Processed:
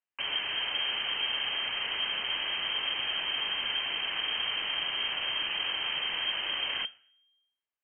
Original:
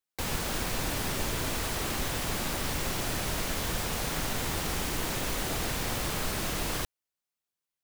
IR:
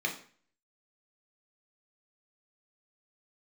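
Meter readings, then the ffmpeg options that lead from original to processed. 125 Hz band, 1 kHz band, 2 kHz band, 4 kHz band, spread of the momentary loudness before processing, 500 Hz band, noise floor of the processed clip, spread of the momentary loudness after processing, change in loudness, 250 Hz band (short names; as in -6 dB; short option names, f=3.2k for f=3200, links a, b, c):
under -20 dB, -4.5 dB, +3.0 dB, +9.0 dB, 0 LU, -11.0 dB, under -85 dBFS, 1 LU, +1.5 dB, -18.0 dB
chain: -filter_complex "[0:a]asplit=2[a][b];[1:a]atrim=start_sample=2205,asetrate=32634,aresample=44100[c];[b][c]afir=irnorm=-1:irlink=0,volume=-23dB[d];[a][d]amix=inputs=2:normalize=0,lowpass=f=2.7k:t=q:w=0.5098,lowpass=f=2.7k:t=q:w=0.6013,lowpass=f=2.7k:t=q:w=0.9,lowpass=f=2.7k:t=q:w=2.563,afreqshift=-3200"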